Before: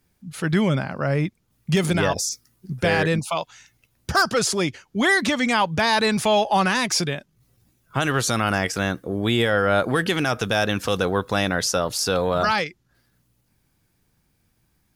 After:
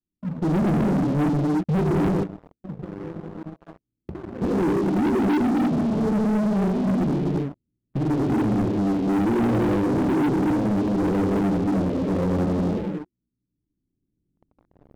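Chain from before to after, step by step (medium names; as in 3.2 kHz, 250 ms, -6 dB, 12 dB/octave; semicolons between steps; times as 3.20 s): recorder AGC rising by 7.4 dB/s; four-pole ladder low-pass 360 Hz, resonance 50%; gated-style reverb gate 370 ms flat, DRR -5.5 dB; 2.23–4.42 s: compression 8:1, threshold -43 dBFS, peak gain reduction 22 dB; waveshaping leveller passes 5; trim -7 dB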